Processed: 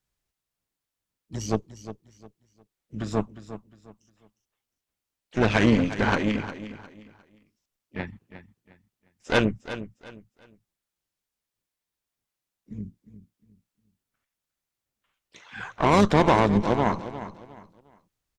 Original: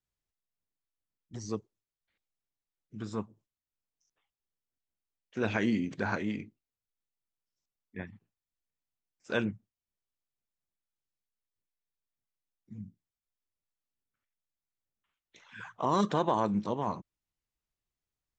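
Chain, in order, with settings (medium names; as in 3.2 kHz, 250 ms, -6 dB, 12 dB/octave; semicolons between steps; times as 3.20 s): Chebyshev shaper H 6 -16 dB, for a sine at -15 dBFS; harmony voices -12 st -12 dB, +5 st -17 dB; on a send: feedback delay 356 ms, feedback 29%, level -13 dB; on the sum: trim +8 dB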